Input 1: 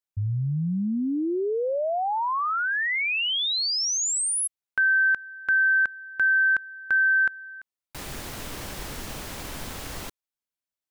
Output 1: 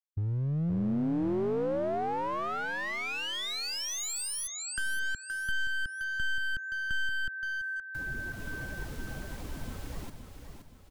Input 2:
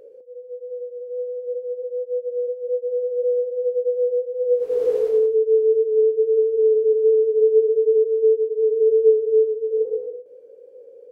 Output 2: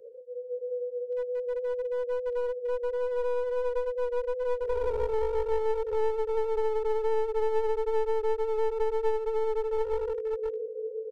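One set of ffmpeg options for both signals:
-filter_complex "[0:a]afftdn=nr=13:nf=-32,aecho=1:1:522|1044|1566|2088|2610:0.398|0.163|0.0669|0.0274|0.0112,aeval=exprs='clip(val(0),-1,0.0531)':c=same,acrossover=split=250|530[a][b][c];[a]acompressor=threshold=-31dB:ratio=2.5[d];[b]acompressor=threshold=-35dB:ratio=3[e];[c]acompressor=threshold=-38dB:ratio=2.5[f];[d][e][f]amix=inputs=3:normalize=0"

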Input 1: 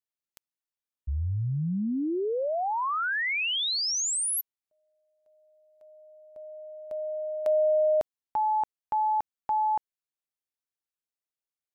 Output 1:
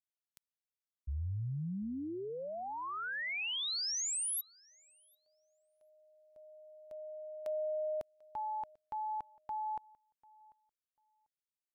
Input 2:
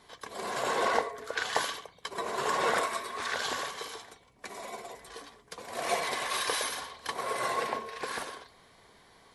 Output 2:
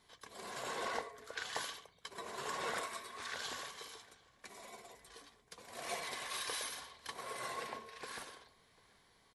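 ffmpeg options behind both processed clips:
-filter_complex "[0:a]equalizer=f=620:w=0.39:g=-5.5,asplit=2[a][b];[b]adelay=743,lowpass=f=4.4k:p=1,volume=-24dB,asplit=2[c][d];[d]adelay=743,lowpass=f=4.4k:p=1,volume=0.18[e];[a][c][e]amix=inputs=3:normalize=0,volume=-7.5dB"

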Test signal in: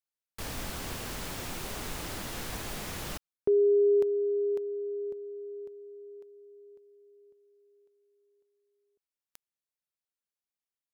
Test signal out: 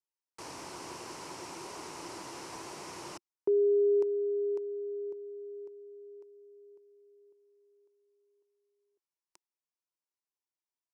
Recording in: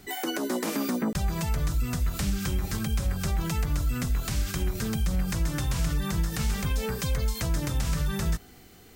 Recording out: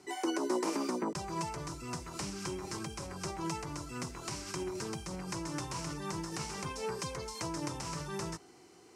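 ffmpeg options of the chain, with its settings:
-af "highpass=170,equalizer=f=220:t=q:w=4:g=-8,equalizer=f=350:t=q:w=4:g=9,equalizer=f=970:t=q:w=4:g=10,equalizer=f=1.7k:t=q:w=4:g=-4,equalizer=f=3.5k:t=q:w=4:g=-7,equalizer=f=5.5k:t=q:w=4:g=5,lowpass=f=9.9k:w=0.5412,lowpass=f=9.9k:w=1.3066,volume=-6dB"

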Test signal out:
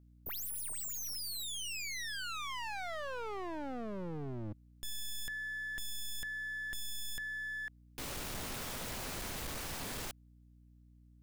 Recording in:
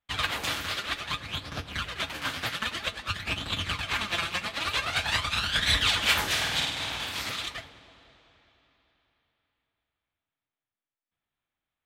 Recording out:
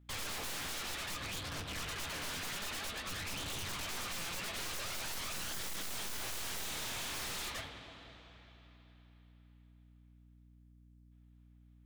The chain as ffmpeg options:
-af "aeval=exprs='(tanh(50.1*val(0)+0.45)-tanh(0.45))/50.1':c=same,aeval=exprs='0.01*(abs(mod(val(0)/0.01+3,4)-2)-1)':c=same,aeval=exprs='val(0)+0.000708*(sin(2*PI*60*n/s)+sin(2*PI*2*60*n/s)/2+sin(2*PI*3*60*n/s)/3+sin(2*PI*4*60*n/s)/4+sin(2*PI*5*60*n/s)/5)':c=same,volume=3.5dB"

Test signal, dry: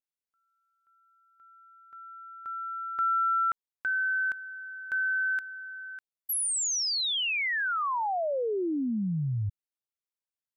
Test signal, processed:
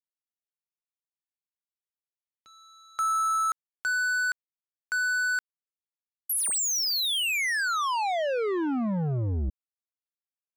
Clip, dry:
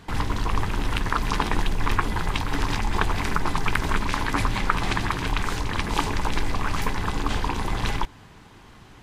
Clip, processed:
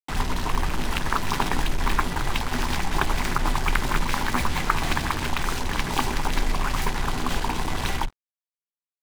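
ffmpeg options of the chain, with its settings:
-af "afreqshift=-37,acrusher=bits=4:mix=0:aa=0.5"

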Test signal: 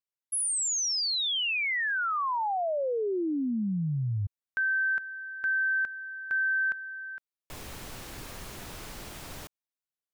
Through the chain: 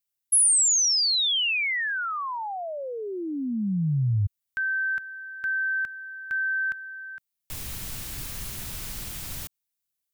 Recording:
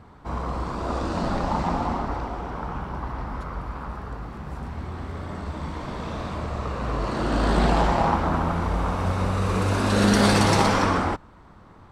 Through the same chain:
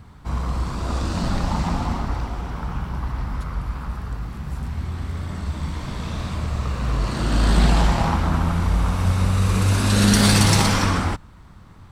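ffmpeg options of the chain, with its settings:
-af "bass=f=250:g=14,treble=f=4k:g=-5,crystalizer=i=9.5:c=0,volume=-7dB"

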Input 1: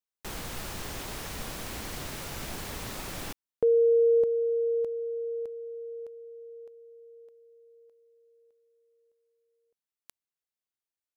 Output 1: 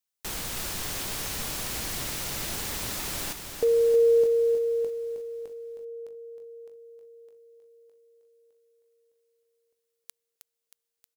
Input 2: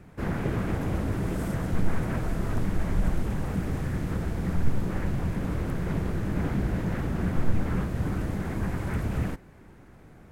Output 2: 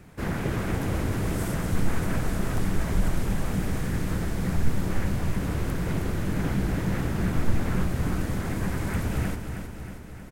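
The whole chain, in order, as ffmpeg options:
-af "highshelf=f=2.7k:g=8.5,aecho=1:1:315|630|945|1260|1575|1890|2205|2520:0.398|0.239|0.143|0.086|0.0516|0.031|0.0186|0.0111"

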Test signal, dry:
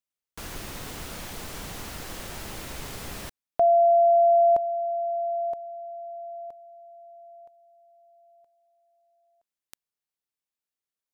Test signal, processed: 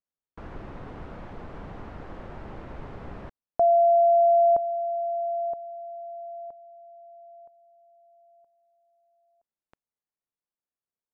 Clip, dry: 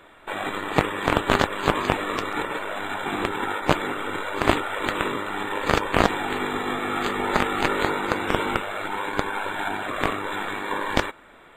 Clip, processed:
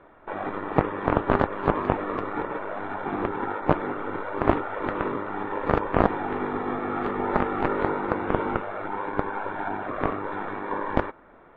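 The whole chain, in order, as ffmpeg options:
-af "lowpass=1.2k"

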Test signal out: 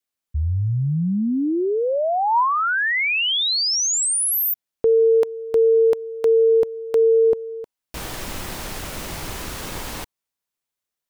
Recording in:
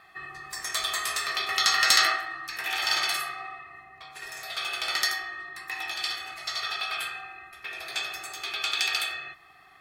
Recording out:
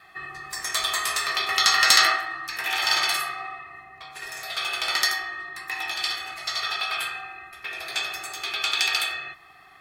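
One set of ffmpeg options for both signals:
-af "adynamicequalizer=threshold=0.00355:dfrequency=960:dqfactor=6.4:tfrequency=960:tqfactor=6.4:attack=5:release=100:ratio=0.375:range=2.5:mode=boostabove:tftype=bell,volume=3.5dB"

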